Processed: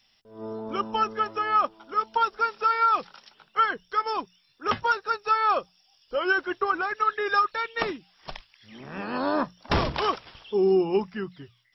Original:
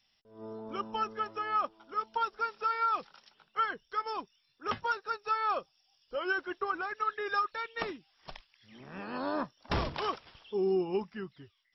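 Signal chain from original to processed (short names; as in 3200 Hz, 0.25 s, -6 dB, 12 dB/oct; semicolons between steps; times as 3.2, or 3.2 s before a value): notches 60/120/180 Hz; gain +8 dB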